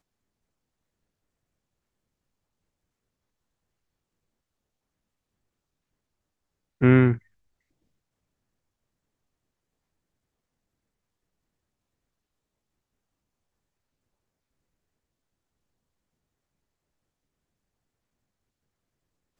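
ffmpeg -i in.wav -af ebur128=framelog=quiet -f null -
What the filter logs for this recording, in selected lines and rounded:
Integrated loudness:
  I:         -20.0 LUFS
  Threshold: -30.7 LUFS
Loudness range:
  LRA:         5.5 LU
  Threshold: -47.4 LUFS
  LRA low:   -32.5 LUFS
  LRA high:  -27.0 LUFS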